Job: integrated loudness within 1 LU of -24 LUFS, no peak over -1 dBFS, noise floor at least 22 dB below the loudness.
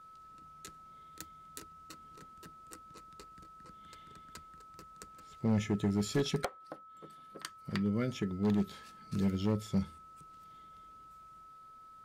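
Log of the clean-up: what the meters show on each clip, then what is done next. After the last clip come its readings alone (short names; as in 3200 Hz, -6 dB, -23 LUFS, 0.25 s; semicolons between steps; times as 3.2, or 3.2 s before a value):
clipped 0.6%; flat tops at -24.0 dBFS; steady tone 1300 Hz; tone level -52 dBFS; loudness -34.5 LUFS; peak -24.0 dBFS; loudness target -24.0 LUFS
-> clip repair -24 dBFS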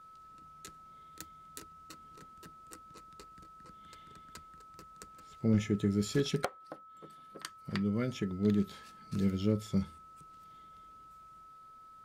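clipped 0.0%; steady tone 1300 Hz; tone level -52 dBFS
-> notch 1300 Hz, Q 30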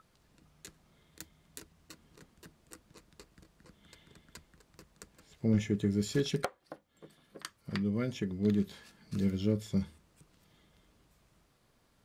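steady tone none; loudness -33.0 LUFS; peak -15.5 dBFS; loudness target -24.0 LUFS
-> gain +9 dB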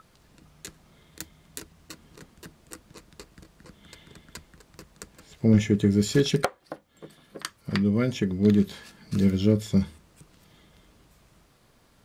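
loudness -24.5 LUFS; peak -6.5 dBFS; noise floor -61 dBFS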